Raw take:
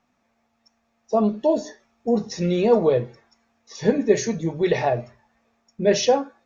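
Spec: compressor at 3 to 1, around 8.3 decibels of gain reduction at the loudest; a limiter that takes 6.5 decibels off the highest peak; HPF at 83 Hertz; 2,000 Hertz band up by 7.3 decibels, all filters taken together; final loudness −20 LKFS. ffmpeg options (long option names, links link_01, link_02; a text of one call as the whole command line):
ffmpeg -i in.wav -af "highpass=83,equalizer=frequency=2000:width_type=o:gain=8.5,acompressor=threshold=-23dB:ratio=3,volume=9dB,alimiter=limit=-9.5dB:level=0:latency=1" out.wav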